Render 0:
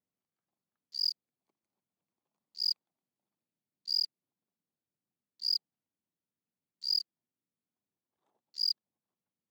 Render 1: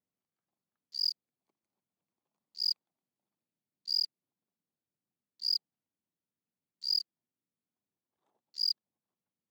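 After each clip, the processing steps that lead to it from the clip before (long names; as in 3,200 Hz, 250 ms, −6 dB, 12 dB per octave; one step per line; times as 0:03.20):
no processing that can be heard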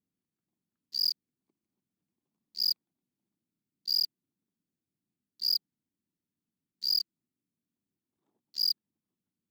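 low shelf with overshoot 420 Hz +9.5 dB, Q 1.5
leveller curve on the samples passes 2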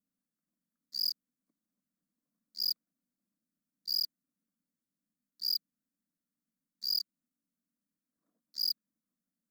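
phaser with its sweep stopped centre 570 Hz, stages 8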